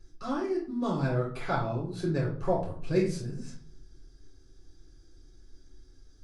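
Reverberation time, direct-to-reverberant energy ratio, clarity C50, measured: 0.50 s, −5.0 dB, 6.0 dB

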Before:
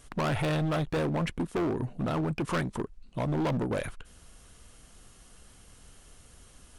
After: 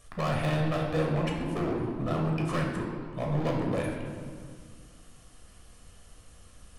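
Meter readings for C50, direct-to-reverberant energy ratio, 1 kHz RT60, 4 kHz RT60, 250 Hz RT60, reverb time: 2.5 dB, −1.0 dB, 1.8 s, 1.3 s, 2.5 s, 1.9 s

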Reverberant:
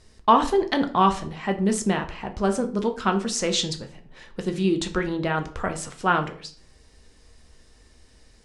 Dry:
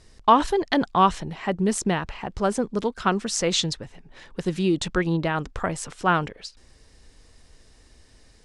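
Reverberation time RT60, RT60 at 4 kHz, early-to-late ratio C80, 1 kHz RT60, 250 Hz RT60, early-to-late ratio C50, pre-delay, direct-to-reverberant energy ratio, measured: 0.50 s, 0.35 s, 18.0 dB, 0.45 s, 0.60 s, 13.5 dB, 4 ms, 5.0 dB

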